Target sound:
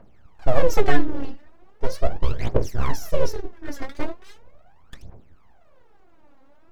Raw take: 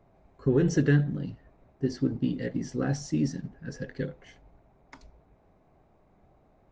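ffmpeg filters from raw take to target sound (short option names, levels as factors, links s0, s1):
-af "aeval=exprs='abs(val(0))':c=same,aphaser=in_gain=1:out_gain=1:delay=3.8:decay=0.76:speed=0.39:type=triangular,volume=1.41"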